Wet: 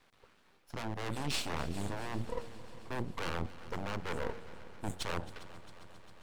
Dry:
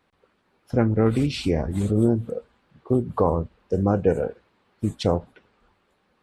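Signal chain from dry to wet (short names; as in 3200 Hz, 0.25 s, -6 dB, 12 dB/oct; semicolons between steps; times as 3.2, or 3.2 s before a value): one-sided fold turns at -18 dBFS; reverse; compressor 6:1, threshold -33 dBFS, peak gain reduction 15.5 dB; reverse; tilt shelf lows -3.5 dB, about 1300 Hz; half-wave rectifier; de-hum 92.59 Hz, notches 9; on a send: multi-head echo 0.134 s, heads second and third, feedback 70%, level -18 dB; on the sum: gain +5 dB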